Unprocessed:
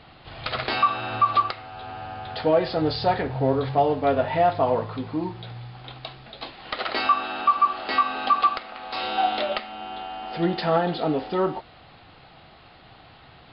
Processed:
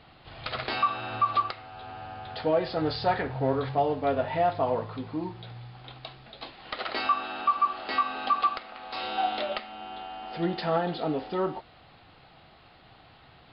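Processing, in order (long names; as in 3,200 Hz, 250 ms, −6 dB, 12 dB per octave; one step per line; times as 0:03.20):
0:02.76–0:03.73: dynamic equaliser 1,500 Hz, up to +5 dB, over −37 dBFS, Q 1
level −5 dB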